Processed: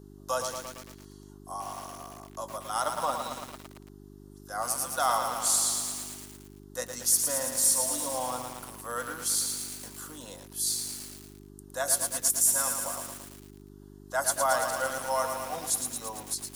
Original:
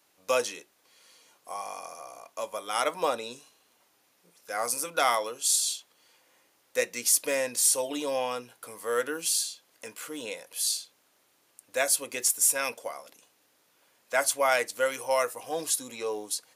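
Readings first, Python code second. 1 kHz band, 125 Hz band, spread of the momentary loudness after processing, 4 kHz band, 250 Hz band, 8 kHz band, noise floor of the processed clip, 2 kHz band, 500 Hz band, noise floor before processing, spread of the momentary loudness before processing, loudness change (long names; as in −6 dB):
+0.5 dB, +9.5 dB, 18 LU, −2.0 dB, −1.5 dB, +1.0 dB, −50 dBFS, −4.5 dB, −5.0 dB, −68 dBFS, 17 LU, −0.5 dB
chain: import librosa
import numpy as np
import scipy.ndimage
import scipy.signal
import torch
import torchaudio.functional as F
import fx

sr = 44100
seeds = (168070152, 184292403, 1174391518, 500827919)

y = fx.fixed_phaser(x, sr, hz=970.0, stages=4)
y = fx.dmg_buzz(y, sr, base_hz=50.0, harmonics=8, level_db=-50.0, tilt_db=-1, odd_only=False)
y = fx.echo_crushed(y, sr, ms=112, feedback_pct=80, bits=7, wet_db=-5)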